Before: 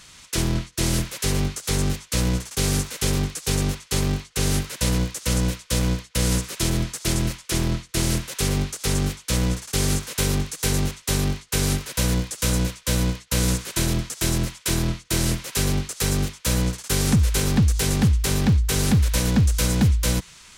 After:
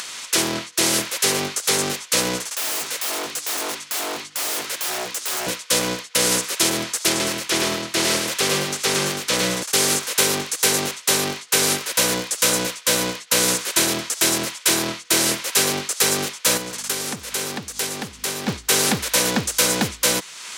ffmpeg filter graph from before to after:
-filter_complex "[0:a]asettb=1/sr,asplit=3[s0][s1][s2];[s0]atrim=end=2.464[s3];[s1]atrim=start=2.46:end=5.47,asetpts=PTS-STARTPTS,afade=t=in:d=0.004:c=qsin,afade=t=out:st=3.006:d=0.004:c=qsin,highpass=f=71:p=1,aeval=exprs='0.0422*(abs(mod(val(0)/0.0422+3,4)-2)-1)':c=same,bandreject=f=50:t=h:w=6,bandreject=f=100:t=h:w=6,bandreject=f=150:t=h:w=6,bandreject=f=200:t=h:w=6,bandreject=f=250:t=h:w=6,bandreject=f=300:t=h:w=6,bandreject=f=350:t=h:w=6[s4];[s2]atrim=start=5.466[s5];[s3][s4]acrossfade=d=0.004:c1=hsin:c2=qsin[s6];[s6][s5]acrossfade=d=0.004:c1=qsin:c2=hsin,asettb=1/sr,asplit=3[s7][s8][s9];[s7]atrim=end=7.094[s10];[s8]atrim=start=7.09:end=9.63,asetpts=PTS-STARTPTS,afade=t=in:d=0.004:c=qsin,afade=t=out:st=2.536:d=0.004:c=qsin,acrossover=split=5700[s11][s12];[s12]acompressor=threshold=0.02:ratio=4:attack=1:release=60[s13];[s11][s13]amix=inputs=2:normalize=0,aecho=1:1:108:0.668,atrim=end_sample=112014[s14];[s9]atrim=start=9.626[s15];[s10][s14]acrossfade=d=0.004:c1=hsin:c2=qsin[s16];[s16][s15]acrossfade=d=0.004:c1=qsin:c2=hsin,asettb=1/sr,asplit=3[s17][s18][s19];[s17]atrim=end=16.574[s20];[s18]atrim=start=16.57:end=18.48,asetpts=PTS-STARTPTS,afade=t=in:d=0.004:c=qsin,afade=t=out:st=1.906:d=0.004:c=qsin,aeval=exprs='val(0)+0.0178*(sin(2*PI*50*n/s)+sin(2*PI*2*50*n/s)/2+sin(2*PI*3*50*n/s)/3+sin(2*PI*4*50*n/s)/4+sin(2*PI*5*50*n/s)/5)':c=same,acompressor=threshold=0.0501:ratio=4:attack=3.2:release=140:knee=1:detection=peak[s21];[s19]atrim=start=18.476[s22];[s20][s21]acrossfade=d=0.004:c1=hsin:c2=qsin[s23];[s23][s22]acrossfade=d=0.004:c1=qsin:c2=hsin,highpass=410,acompressor=mode=upward:threshold=0.02:ratio=2.5,volume=2.51"

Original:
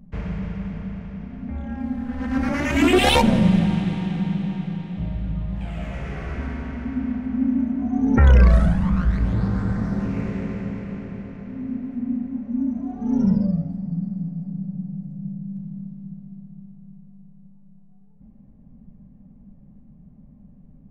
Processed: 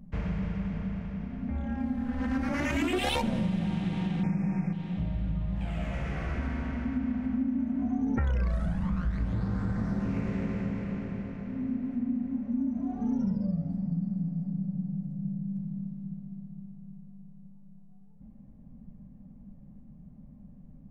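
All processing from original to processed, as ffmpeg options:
-filter_complex "[0:a]asettb=1/sr,asplit=3[s0][s1][s2];[s0]atrim=end=4.234[s3];[s1]atrim=start=4.23:end=4.73,asetpts=PTS-STARTPTS,afade=t=in:d=0.004:c=qsin,afade=t=out:st=0.496:d=0.004:c=qsin,asuperstop=centerf=3600:order=20:qfactor=1.5,acontrast=81[s4];[s2]atrim=start=4.726[s5];[s3][s4]acrossfade=d=0.004:c1=hsin:c2=qsin[s6];[s6][s5]acrossfade=d=0.004:c1=qsin:c2=hsin,bandreject=f=410:w=12,acompressor=threshold=0.0631:ratio=6,volume=0.794"

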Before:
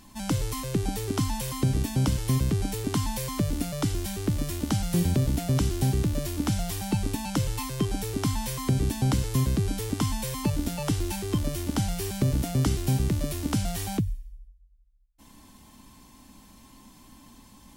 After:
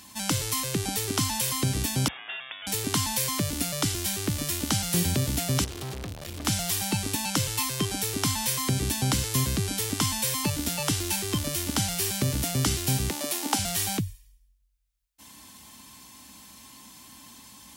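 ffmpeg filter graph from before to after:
-filter_complex "[0:a]asettb=1/sr,asplit=3[s0][s1][s2];[s0]atrim=end=2.084[s3];[s1]atrim=start=2.08:end=2.67,asetpts=PTS-STARTPTS,afade=t=in:d=0.004:c=qsin,afade=t=out:st=0.586:d=0.004:c=qsin,highpass=1100,lowpass=f=3200:t=q:w=0.5098,lowpass=f=3200:t=q:w=0.6013,lowpass=f=3200:t=q:w=0.9,lowpass=f=3200:t=q:w=2.563,afreqshift=-3800[s4];[s2]atrim=start=2.666[s5];[s3][s4]acrossfade=d=0.004:c1=hsin:c2=qsin[s6];[s6][s5]acrossfade=d=0.004:c1=qsin:c2=hsin,asettb=1/sr,asplit=3[s7][s8][s9];[s7]atrim=end=5.644[s10];[s8]atrim=start=5.64:end=6.45,asetpts=PTS-STARTPTS,afade=t=in:d=0.004:c=qsin,afade=t=out:st=0.806:d=0.004:c=qsin,acrossover=split=4300[s11][s12];[s12]acompressor=threshold=0.00562:ratio=4:attack=1:release=60[s13];[s11][s13]amix=inputs=2:normalize=0,asubboost=boost=10.5:cutoff=87,aeval=exprs='(tanh(35.5*val(0)+0.5)-tanh(0.5))/35.5':c=same[s14];[s9]atrim=start=6.446[s15];[s10][s14]acrossfade=d=0.004:c1=hsin:c2=qsin[s16];[s16][s15]acrossfade=d=0.004:c1=qsin:c2=hsin,asettb=1/sr,asplit=3[s17][s18][s19];[s17]atrim=end=13.104[s20];[s18]atrim=start=13.1:end=13.59,asetpts=PTS-STARTPTS,afade=t=in:d=0.004:c=qsin,afade=t=out:st=0.486:d=0.004:c=qsin,highpass=f=240:w=0.5412,highpass=f=240:w=1.3066,equalizer=f=830:t=o:w=0.29:g=14.5[s21];[s19]atrim=start=13.586[s22];[s20][s21]acrossfade=d=0.004:c1=hsin:c2=qsin[s23];[s23][s22]acrossfade=d=0.004:c1=qsin:c2=hsin,highpass=f=58:w=0.5412,highpass=f=58:w=1.3066,tiltshelf=f=1100:g=-6,acontrast=70,volume=0.668"

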